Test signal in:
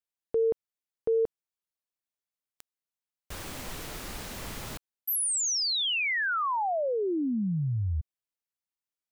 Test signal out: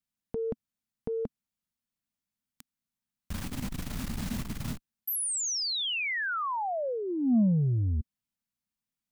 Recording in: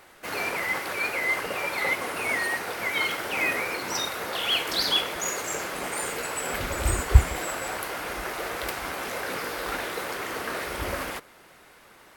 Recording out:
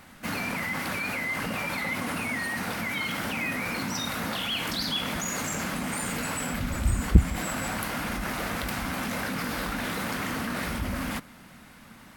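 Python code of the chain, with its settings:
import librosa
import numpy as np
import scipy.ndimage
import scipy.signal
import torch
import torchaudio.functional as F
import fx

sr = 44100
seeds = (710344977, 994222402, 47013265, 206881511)

p1 = fx.low_shelf_res(x, sr, hz=300.0, db=8.5, q=3.0)
p2 = fx.over_compress(p1, sr, threshold_db=-32.0, ratio=-1.0)
p3 = p1 + (p2 * 10.0 ** (-1.0 / 20.0))
p4 = fx.transformer_sat(p3, sr, knee_hz=140.0)
y = p4 * 10.0 ** (-7.5 / 20.0)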